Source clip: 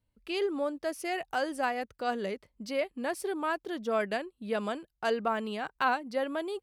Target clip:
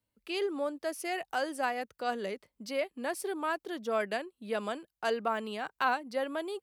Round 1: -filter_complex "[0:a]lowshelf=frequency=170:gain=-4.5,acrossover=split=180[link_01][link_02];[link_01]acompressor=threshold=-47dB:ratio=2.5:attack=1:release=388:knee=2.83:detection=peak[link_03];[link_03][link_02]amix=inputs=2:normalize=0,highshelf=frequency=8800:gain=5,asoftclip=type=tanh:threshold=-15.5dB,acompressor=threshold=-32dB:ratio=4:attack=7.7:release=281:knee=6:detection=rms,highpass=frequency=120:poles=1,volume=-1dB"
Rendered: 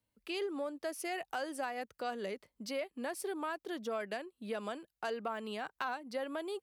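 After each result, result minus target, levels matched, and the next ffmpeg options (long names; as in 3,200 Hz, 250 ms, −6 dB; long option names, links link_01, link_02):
soft clipping: distortion +19 dB; downward compressor: peak gain reduction +9.5 dB
-filter_complex "[0:a]lowshelf=frequency=170:gain=-4.5,acrossover=split=180[link_01][link_02];[link_01]acompressor=threshold=-47dB:ratio=2.5:attack=1:release=388:knee=2.83:detection=peak[link_03];[link_03][link_02]amix=inputs=2:normalize=0,highshelf=frequency=8800:gain=5,asoftclip=type=tanh:threshold=-5dB,acompressor=threshold=-32dB:ratio=4:attack=7.7:release=281:knee=6:detection=rms,highpass=frequency=120:poles=1,volume=-1dB"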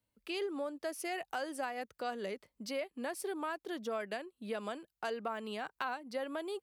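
downward compressor: peak gain reduction +10.5 dB
-filter_complex "[0:a]lowshelf=frequency=170:gain=-4.5,acrossover=split=180[link_01][link_02];[link_01]acompressor=threshold=-47dB:ratio=2.5:attack=1:release=388:knee=2.83:detection=peak[link_03];[link_03][link_02]amix=inputs=2:normalize=0,highshelf=frequency=8800:gain=5,asoftclip=type=tanh:threshold=-5dB,highpass=frequency=120:poles=1,volume=-1dB"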